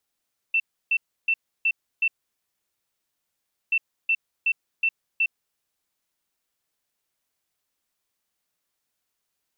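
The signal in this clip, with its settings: beep pattern sine 2680 Hz, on 0.06 s, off 0.31 s, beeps 5, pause 1.64 s, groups 2, -18 dBFS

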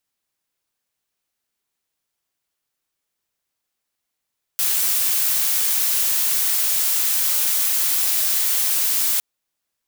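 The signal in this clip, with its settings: noise blue, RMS -19.5 dBFS 4.61 s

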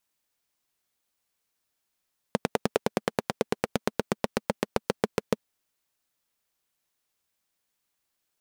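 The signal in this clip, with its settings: single-cylinder engine model, changing speed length 3.10 s, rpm 1200, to 800, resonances 220/430 Hz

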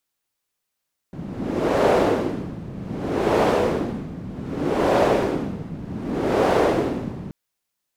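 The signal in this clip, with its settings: wind-like swept noise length 6.18 s, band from 170 Hz, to 530 Hz, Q 1.6, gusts 4, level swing 16 dB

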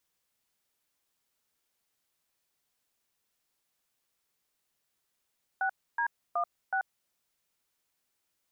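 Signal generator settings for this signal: DTMF "6D16", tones 85 ms, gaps 0.287 s, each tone -29 dBFS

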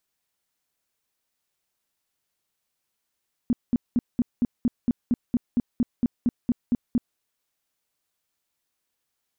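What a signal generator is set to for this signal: tone bursts 241 Hz, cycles 7, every 0.23 s, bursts 16, -17 dBFS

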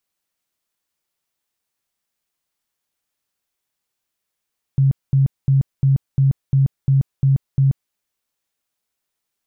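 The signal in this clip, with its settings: tone bursts 136 Hz, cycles 18, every 0.35 s, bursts 9, -11 dBFS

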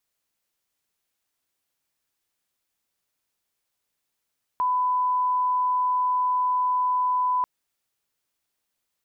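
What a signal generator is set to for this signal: line-up tone -20 dBFS 2.84 s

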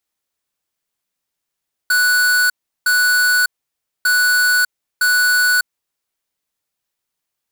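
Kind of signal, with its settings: beep pattern square 1480 Hz, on 0.60 s, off 0.36 s, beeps 2, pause 0.59 s, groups 2, -14 dBFS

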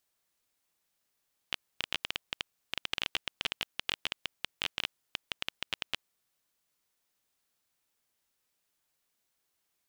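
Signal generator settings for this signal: random clicks 13/s -13 dBFS 4.59 s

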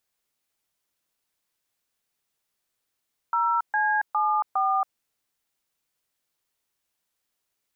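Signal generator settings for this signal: DTMF "0C74", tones 0.277 s, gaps 0.131 s, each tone -23 dBFS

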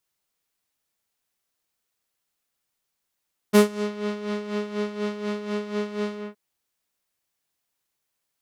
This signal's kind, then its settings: synth patch with tremolo G#4, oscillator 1 triangle, interval 0 st, detune 21 cents, sub -3.5 dB, noise -15 dB, filter lowpass, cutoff 1900 Hz, Q 0.89, filter envelope 3 oct, filter decay 0.37 s, attack 22 ms, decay 0.13 s, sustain -14.5 dB, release 0.21 s, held 2.61 s, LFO 4.1 Hz, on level 10.5 dB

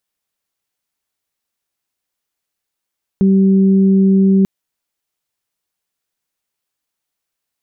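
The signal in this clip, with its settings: steady additive tone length 1.24 s, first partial 193 Hz, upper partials -10.5 dB, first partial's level -8 dB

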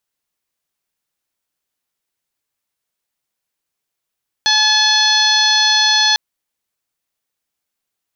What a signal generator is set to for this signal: steady additive tone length 1.70 s, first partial 858 Hz, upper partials 3/-8/5/5.5/-3/-1.5 dB, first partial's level -20.5 dB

